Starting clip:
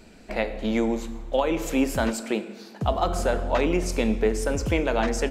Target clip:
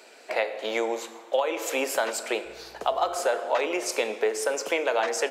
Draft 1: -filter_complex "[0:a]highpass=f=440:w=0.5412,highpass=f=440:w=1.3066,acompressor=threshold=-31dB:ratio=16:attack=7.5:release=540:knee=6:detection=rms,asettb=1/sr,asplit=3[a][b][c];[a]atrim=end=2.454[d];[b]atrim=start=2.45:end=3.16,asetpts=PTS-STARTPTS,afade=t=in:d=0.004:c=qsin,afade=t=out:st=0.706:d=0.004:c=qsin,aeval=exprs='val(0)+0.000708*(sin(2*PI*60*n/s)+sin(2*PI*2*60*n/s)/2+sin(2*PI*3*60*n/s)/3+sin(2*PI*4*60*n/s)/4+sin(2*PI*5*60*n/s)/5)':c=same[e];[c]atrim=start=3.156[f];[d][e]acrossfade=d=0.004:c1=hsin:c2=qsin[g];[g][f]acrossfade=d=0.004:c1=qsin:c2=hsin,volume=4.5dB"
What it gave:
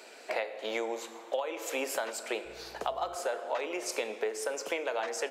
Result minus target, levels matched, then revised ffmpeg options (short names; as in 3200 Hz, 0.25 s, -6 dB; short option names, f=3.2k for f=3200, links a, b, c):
compressor: peak gain reduction +9 dB
-filter_complex "[0:a]highpass=f=440:w=0.5412,highpass=f=440:w=1.3066,acompressor=threshold=-21.5dB:ratio=16:attack=7.5:release=540:knee=6:detection=rms,asettb=1/sr,asplit=3[a][b][c];[a]atrim=end=2.454[d];[b]atrim=start=2.45:end=3.16,asetpts=PTS-STARTPTS,afade=t=in:d=0.004:c=qsin,afade=t=out:st=0.706:d=0.004:c=qsin,aeval=exprs='val(0)+0.000708*(sin(2*PI*60*n/s)+sin(2*PI*2*60*n/s)/2+sin(2*PI*3*60*n/s)/3+sin(2*PI*4*60*n/s)/4+sin(2*PI*5*60*n/s)/5)':c=same[e];[c]atrim=start=3.156[f];[d][e]acrossfade=d=0.004:c1=hsin:c2=qsin[g];[g][f]acrossfade=d=0.004:c1=qsin:c2=hsin,volume=4.5dB"